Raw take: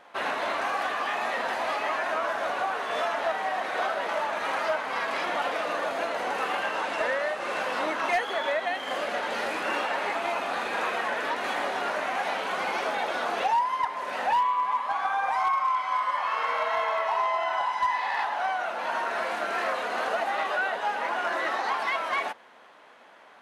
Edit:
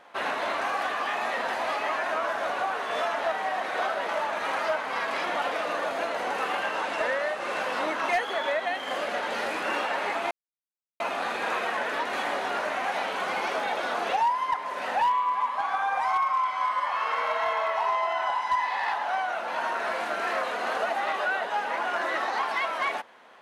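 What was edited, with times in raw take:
10.31 insert silence 0.69 s

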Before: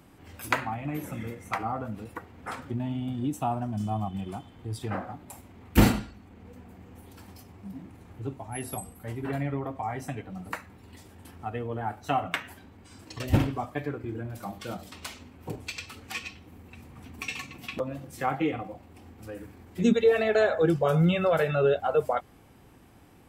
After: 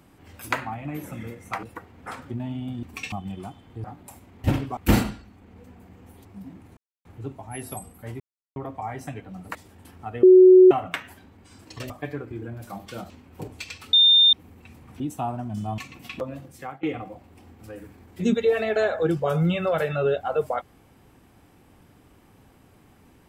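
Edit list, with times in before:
1.63–2.03 cut
3.23–4.01 swap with 17.08–17.37
4.73–5.06 cut
7.14–7.54 cut
8.06 insert silence 0.28 s
9.21–9.57 mute
10.56–10.95 cut
11.63–12.11 bleep 370 Hz -7.5 dBFS
13.3–13.63 move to 5.66
14.83–15.18 cut
16.01–16.41 bleep 3620 Hz -12 dBFS
17.97–18.42 fade out, to -20.5 dB

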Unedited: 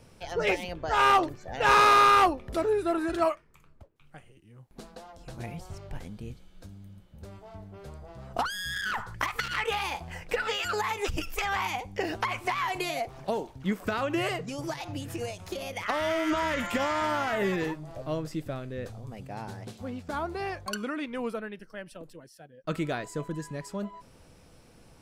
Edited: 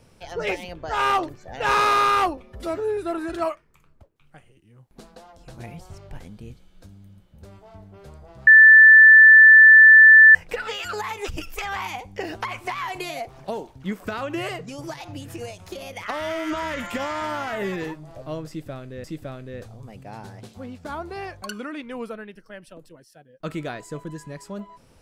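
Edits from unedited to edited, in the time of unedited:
2.37–2.77 stretch 1.5×
8.27–10.15 bleep 1760 Hz -6 dBFS
18.28–18.84 loop, 2 plays

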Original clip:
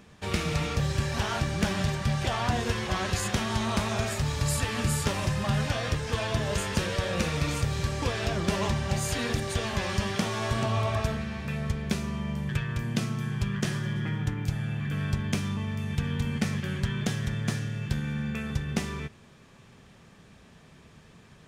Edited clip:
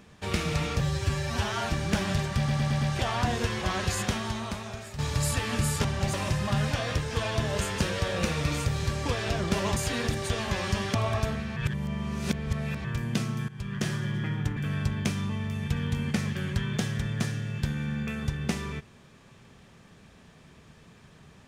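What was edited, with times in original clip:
0.81–1.42 stretch 1.5×
2.07 stutter 0.11 s, 5 plays
3.3–4.24 fade out quadratic, to -11.5 dB
8.73–9.02 move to 5.1
10.2–10.76 cut
11.38–12.66 reverse
13.3–13.68 fade in, from -17.5 dB
14.38–14.84 cut

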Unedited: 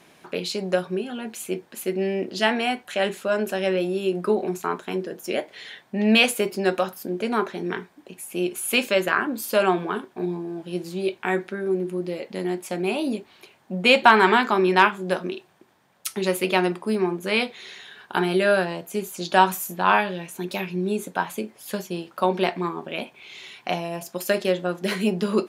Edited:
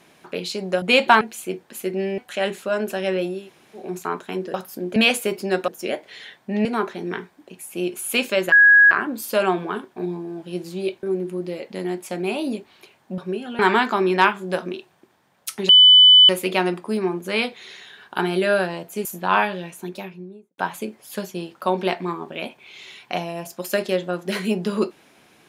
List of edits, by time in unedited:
0.82–1.23 swap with 13.78–14.17
2.2–2.77 cut
3.97–4.44 room tone, crossfade 0.24 s
5.13–6.1 swap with 6.82–7.24
9.11 add tone 1660 Hz -8 dBFS 0.39 s
11.23–11.63 cut
16.27 add tone 3000 Hz -6.5 dBFS 0.60 s
19.03–19.61 cut
20.17–21.14 studio fade out

